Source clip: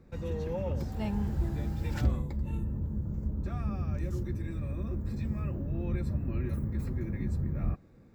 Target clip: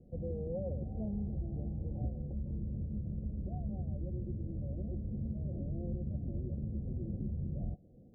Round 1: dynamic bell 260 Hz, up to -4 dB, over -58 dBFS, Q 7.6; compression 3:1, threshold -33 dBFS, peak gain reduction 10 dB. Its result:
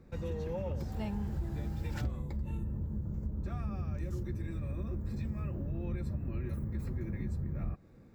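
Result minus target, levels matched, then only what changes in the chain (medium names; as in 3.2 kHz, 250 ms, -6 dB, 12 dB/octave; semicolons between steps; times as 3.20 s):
1 kHz band +7.0 dB
add after compression: rippled Chebyshev low-pass 750 Hz, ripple 3 dB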